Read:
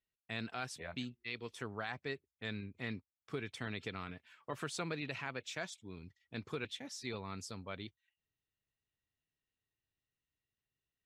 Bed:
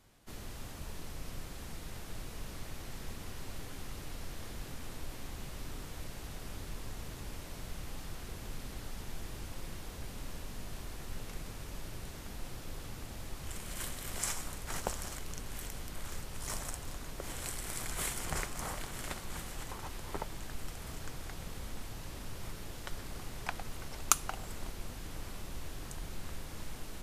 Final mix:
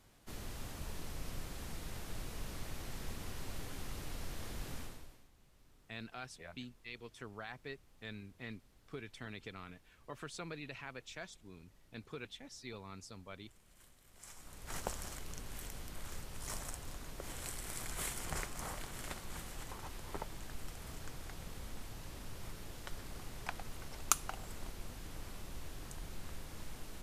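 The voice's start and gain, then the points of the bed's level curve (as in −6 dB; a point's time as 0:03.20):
5.60 s, −5.5 dB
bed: 0:04.80 −0.5 dB
0:05.30 −23.5 dB
0:14.12 −23.5 dB
0:14.75 −4 dB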